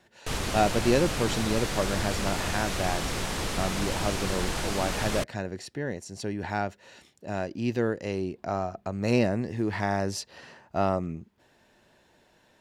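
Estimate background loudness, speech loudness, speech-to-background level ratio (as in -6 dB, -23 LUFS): -31.0 LUFS, -30.0 LUFS, 1.0 dB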